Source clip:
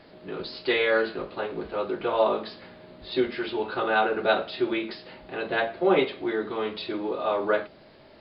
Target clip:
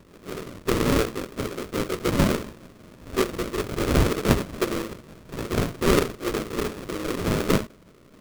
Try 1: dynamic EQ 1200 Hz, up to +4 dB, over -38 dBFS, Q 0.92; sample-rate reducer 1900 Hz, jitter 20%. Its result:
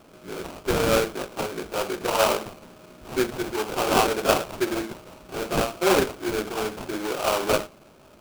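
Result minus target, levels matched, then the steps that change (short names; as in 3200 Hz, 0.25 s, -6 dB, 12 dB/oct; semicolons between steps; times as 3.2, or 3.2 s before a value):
sample-rate reducer: distortion -22 dB
change: sample-rate reducer 830 Hz, jitter 20%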